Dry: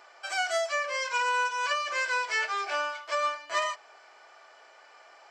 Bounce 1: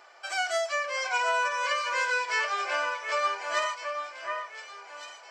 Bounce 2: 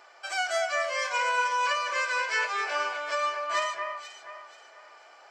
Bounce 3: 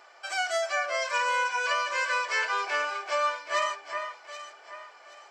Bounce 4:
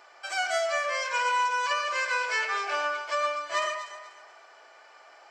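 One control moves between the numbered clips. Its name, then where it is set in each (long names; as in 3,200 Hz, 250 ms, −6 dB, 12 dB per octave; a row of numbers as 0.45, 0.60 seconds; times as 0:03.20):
delay that swaps between a low-pass and a high-pass, delay time: 730, 241, 388, 122 milliseconds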